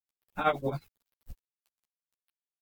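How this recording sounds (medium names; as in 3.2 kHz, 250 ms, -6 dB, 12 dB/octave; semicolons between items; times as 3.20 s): a quantiser's noise floor 10-bit, dither none; tremolo triangle 11 Hz, depth 100%; a shimmering, thickened sound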